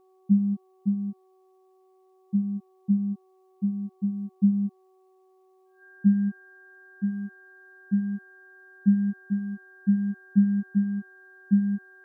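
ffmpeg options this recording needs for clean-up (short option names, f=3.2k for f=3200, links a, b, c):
-af "bandreject=f=375.8:t=h:w=4,bandreject=f=751.6:t=h:w=4,bandreject=f=1.1274k:t=h:w=4,bandreject=f=1.6k:w=30"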